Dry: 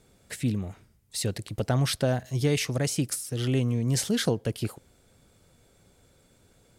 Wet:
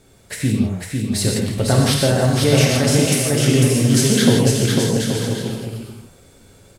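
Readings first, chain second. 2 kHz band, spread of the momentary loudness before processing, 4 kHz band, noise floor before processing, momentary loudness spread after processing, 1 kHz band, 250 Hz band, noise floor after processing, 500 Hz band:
+12.5 dB, 9 LU, +12.5 dB, -62 dBFS, 10 LU, +11.5 dB, +13.0 dB, -50 dBFS, +12.0 dB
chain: on a send: bouncing-ball echo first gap 500 ms, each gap 0.65×, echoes 5; on the sum: gated-style reverb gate 190 ms flat, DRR -0.5 dB; trim +7 dB

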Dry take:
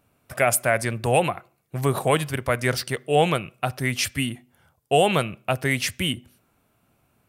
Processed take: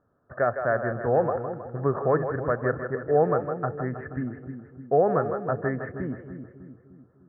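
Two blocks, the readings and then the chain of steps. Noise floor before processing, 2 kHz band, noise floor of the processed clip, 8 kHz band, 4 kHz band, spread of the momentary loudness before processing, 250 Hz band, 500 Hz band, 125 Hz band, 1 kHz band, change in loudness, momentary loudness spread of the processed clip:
-68 dBFS, -8.0 dB, -61 dBFS, under -40 dB, under -40 dB, 9 LU, -2.5 dB, 0.0 dB, -4.5 dB, -3.5 dB, -3.0 dB, 16 LU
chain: rippled Chebyshev low-pass 1.8 kHz, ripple 6 dB; two-band feedback delay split 370 Hz, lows 301 ms, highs 159 ms, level -7.5 dB

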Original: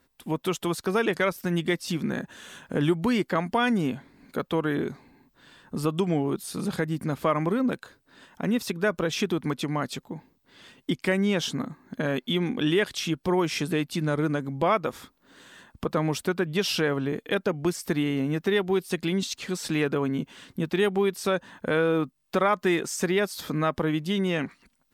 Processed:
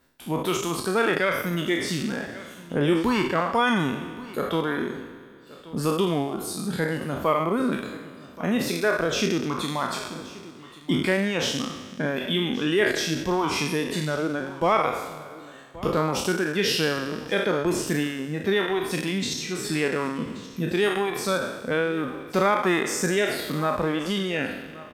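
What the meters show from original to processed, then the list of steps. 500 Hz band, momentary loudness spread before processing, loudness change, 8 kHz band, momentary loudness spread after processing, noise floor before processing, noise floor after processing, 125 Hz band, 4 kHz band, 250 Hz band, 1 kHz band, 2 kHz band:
+1.5 dB, 9 LU, +1.5 dB, +4.5 dB, 10 LU, -69 dBFS, -45 dBFS, -0.5 dB, +3.5 dB, +0.5 dB, +3.5 dB, +4.0 dB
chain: spectral sustain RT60 2.30 s; reverb removal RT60 1.6 s; delay 1128 ms -18.5 dB

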